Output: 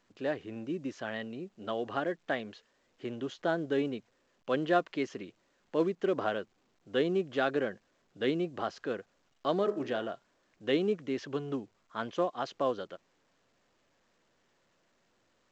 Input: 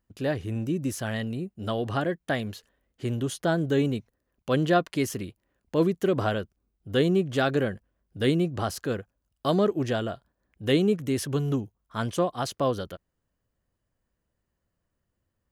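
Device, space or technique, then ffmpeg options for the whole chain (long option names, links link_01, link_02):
telephone: -filter_complex "[0:a]asettb=1/sr,asplit=3[link_01][link_02][link_03];[link_01]atrim=end=9.584[link_04];[link_02]atrim=start=9.58:end=10.08,asetpts=PTS-STARTPTS,afade=type=in:duration=0.004:curve=qsin,afade=type=out:start_time=0.496:duration=0.004:curve=qsin,bandreject=frequency=51.78:width_type=h:width=4,bandreject=frequency=103.56:width_type=h:width=4,bandreject=frequency=155.34:width_type=h:width=4,bandreject=frequency=207.12:width_type=h:width=4,bandreject=frequency=258.9:width_type=h:width=4,bandreject=frequency=310.68:width_type=h:width=4,bandreject=frequency=362.46:width_type=h:width=4,bandreject=frequency=414.24:width_type=h:width=4,bandreject=frequency=466.02:width_type=h:width=4,bandreject=frequency=517.8:width_type=h:width=4,bandreject=frequency=569.58:width_type=h:width=4,bandreject=frequency=621.36:width_type=h:width=4,bandreject=frequency=673.14:width_type=h:width=4,bandreject=frequency=724.92:width_type=h:width=4,bandreject=frequency=776.7:width_type=h:width=4,bandreject=frequency=828.48:width_type=h:width=4,bandreject=frequency=880.26:width_type=h:width=4,bandreject=frequency=932.04:width_type=h:width=4,bandreject=frequency=983.82:width_type=h:width=4,bandreject=frequency=1035.6:width_type=h:width=4,bandreject=frequency=1087.38:width_type=h:width=4,bandreject=frequency=1139.16:width_type=h:width=4,bandreject=frequency=1190.94:width_type=h:width=4,bandreject=frequency=1242.72:width_type=h:width=4,bandreject=frequency=1294.5:width_type=h:width=4,bandreject=frequency=1346.28:width_type=h:width=4,bandreject=frequency=1398.06:width_type=h:width=4,bandreject=frequency=1449.84:width_type=h:width=4,bandreject=frequency=1501.62:width_type=h:width=4,bandreject=frequency=1553.4:width_type=h:width=4,bandreject=frequency=1605.18:width_type=h:width=4,bandreject=frequency=1656.96:width_type=h:width=4,bandreject=frequency=1708.74:width_type=h:width=4,bandreject=frequency=1760.52:width_type=h:width=4,bandreject=frequency=1812.3:width_type=h:width=4,bandreject=frequency=1864.08:width_type=h:width=4,bandreject=frequency=1915.86:width_type=h:width=4,bandreject=frequency=1967.64:width_type=h:width=4[link_05];[link_03]atrim=start=10.076[link_06];[link_04][link_05]acrossfade=duration=0.004:curve1=hsin:curve2=qsin[link_07];[link_07][link_06]acrossfade=duration=0.004:curve1=qsin:curve2=hsin,highpass=280,lowpass=3300,volume=-4dB" -ar 16000 -c:a pcm_alaw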